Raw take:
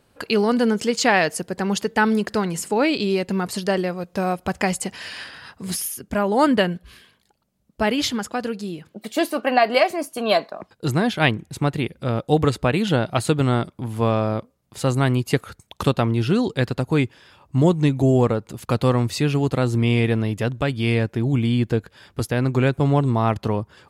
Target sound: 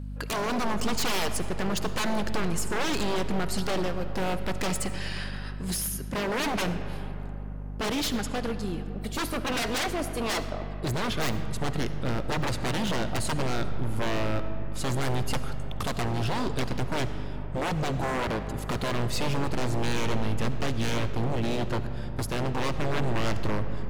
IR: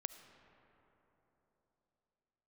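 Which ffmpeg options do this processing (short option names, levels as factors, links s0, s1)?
-filter_complex "[0:a]aeval=exprs='val(0)+0.0282*(sin(2*PI*50*n/s)+sin(2*PI*2*50*n/s)/2+sin(2*PI*3*50*n/s)/3+sin(2*PI*4*50*n/s)/4+sin(2*PI*5*50*n/s)/5)':c=same,aeval=exprs='0.1*(abs(mod(val(0)/0.1+3,4)-2)-1)':c=same[s0];[1:a]atrim=start_sample=2205[s1];[s0][s1]afir=irnorm=-1:irlink=0"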